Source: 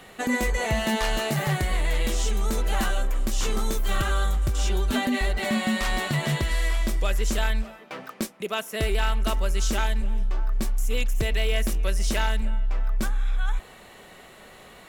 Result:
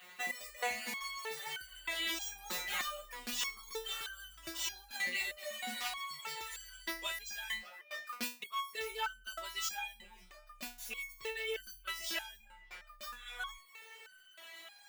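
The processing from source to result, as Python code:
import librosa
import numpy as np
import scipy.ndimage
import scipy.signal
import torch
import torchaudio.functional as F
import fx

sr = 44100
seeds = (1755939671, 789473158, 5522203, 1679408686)

y = scipy.signal.medfilt(x, 5)
y = fx.riaa(y, sr, side='recording')
y = fx.dereverb_blind(y, sr, rt60_s=0.67)
y = fx.peak_eq(y, sr, hz=2200.0, db=8.5, octaves=2.9)
y = fx.rider(y, sr, range_db=4, speed_s=0.5)
y = fx.resonator_held(y, sr, hz=3.2, low_hz=180.0, high_hz=1500.0)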